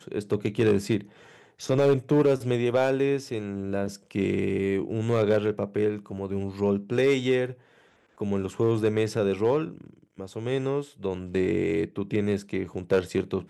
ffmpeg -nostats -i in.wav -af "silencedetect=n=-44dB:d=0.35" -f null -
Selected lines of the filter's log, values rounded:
silence_start: 7.54
silence_end: 8.18 | silence_duration: 0.64